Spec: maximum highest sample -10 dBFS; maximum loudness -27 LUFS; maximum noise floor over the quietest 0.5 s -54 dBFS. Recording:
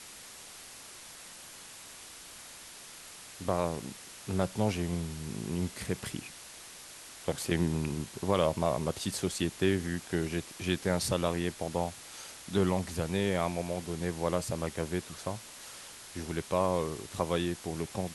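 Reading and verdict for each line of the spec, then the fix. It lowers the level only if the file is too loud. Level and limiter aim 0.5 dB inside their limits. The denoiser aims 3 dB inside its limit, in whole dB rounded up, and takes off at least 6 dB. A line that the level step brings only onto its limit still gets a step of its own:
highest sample -13.0 dBFS: pass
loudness -33.0 LUFS: pass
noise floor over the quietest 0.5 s -49 dBFS: fail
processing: noise reduction 8 dB, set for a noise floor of -49 dBFS

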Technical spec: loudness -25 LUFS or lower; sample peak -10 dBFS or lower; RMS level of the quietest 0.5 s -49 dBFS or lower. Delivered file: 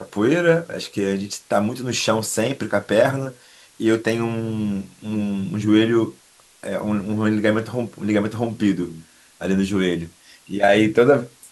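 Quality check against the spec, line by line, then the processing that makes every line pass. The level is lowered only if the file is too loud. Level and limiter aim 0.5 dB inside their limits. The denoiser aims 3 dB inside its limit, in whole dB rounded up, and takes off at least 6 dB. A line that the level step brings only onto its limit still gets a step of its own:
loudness -21.0 LUFS: fail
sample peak -4.5 dBFS: fail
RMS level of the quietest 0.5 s -52 dBFS: pass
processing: trim -4.5 dB; peak limiter -10.5 dBFS

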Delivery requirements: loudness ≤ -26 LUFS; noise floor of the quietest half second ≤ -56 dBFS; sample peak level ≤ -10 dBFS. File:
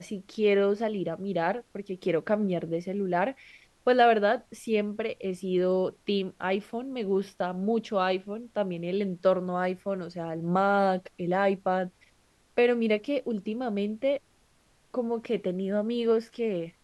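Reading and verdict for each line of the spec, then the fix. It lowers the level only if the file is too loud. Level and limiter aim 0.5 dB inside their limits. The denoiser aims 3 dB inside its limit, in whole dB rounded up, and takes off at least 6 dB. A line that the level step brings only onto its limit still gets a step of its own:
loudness -28.5 LUFS: pass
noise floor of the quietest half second -64 dBFS: pass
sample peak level -10.5 dBFS: pass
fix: none needed

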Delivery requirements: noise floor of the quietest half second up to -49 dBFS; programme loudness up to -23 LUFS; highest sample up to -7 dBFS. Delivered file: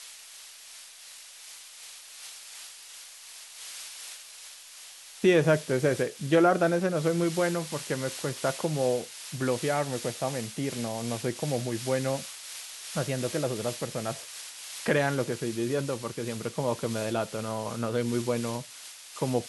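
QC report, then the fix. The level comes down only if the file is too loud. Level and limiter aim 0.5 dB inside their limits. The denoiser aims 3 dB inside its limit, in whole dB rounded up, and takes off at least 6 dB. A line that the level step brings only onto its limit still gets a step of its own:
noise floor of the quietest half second -48 dBFS: fail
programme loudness -29.5 LUFS: pass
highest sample -11.5 dBFS: pass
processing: noise reduction 6 dB, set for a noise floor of -48 dBFS

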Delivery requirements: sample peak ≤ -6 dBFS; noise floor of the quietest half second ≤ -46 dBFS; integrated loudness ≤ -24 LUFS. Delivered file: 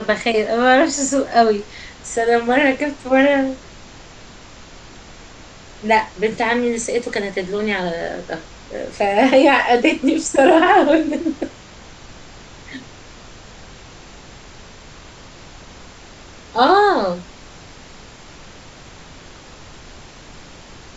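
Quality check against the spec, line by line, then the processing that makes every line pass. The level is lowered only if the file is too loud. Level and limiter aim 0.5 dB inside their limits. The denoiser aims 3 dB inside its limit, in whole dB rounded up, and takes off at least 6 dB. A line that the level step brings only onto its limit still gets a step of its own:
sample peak -2.5 dBFS: fail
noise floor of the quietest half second -40 dBFS: fail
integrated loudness -16.5 LUFS: fail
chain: trim -8 dB

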